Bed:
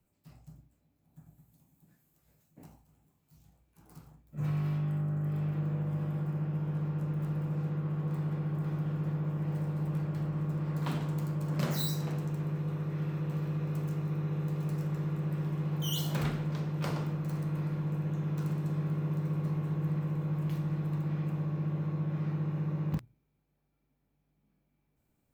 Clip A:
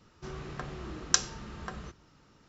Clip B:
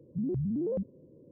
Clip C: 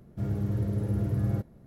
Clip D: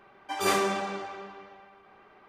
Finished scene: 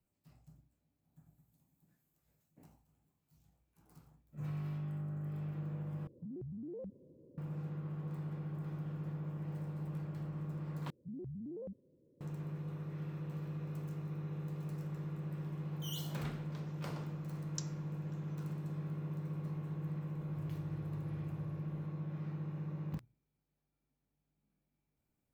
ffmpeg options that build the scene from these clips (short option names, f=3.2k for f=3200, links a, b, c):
-filter_complex "[2:a]asplit=2[a][b];[0:a]volume=-8.5dB[c];[a]acompressor=threshold=-38dB:ratio=6:attack=3.2:release=140:knee=1:detection=peak[d];[1:a]aderivative[e];[3:a]acompressor=threshold=-45dB:ratio=6:attack=3.2:release=140:knee=1:detection=peak[f];[c]asplit=3[g][h][i];[g]atrim=end=6.074[j];[d]atrim=end=1.31,asetpts=PTS-STARTPTS,volume=-5dB[k];[h]atrim=start=7.376:end=10.904[l];[b]atrim=end=1.31,asetpts=PTS-STARTPTS,volume=-13.5dB[m];[i]atrim=start=12.206[n];[e]atrim=end=2.48,asetpts=PTS-STARTPTS,volume=-17dB,afade=t=in:d=0.004:c=hsin,afade=t=out:st=2.476:d=0.004:c=hsin,adelay=16440[o];[f]atrim=end=1.66,asetpts=PTS-STARTPTS,volume=-4dB,afade=t=in:d=0.004:c=hsin,afade=t=out:st=1.656:d=0.004:c=hsin,adelay=890820S[p];[j][k]acrossfade=d=0.004:c1=hsin:c2=hsin[q];[q][l]acrossfade=d=0.004:c1=hsin:c2=hsin[r];[r][m]acrossfade=d=0.004:c1=hsin:c2=hsin[s];[s][n]acrossfade=d=0.004:c1=hsin:c2=hsin[t];[t][o][p]amix=inputs=3:normalize=0"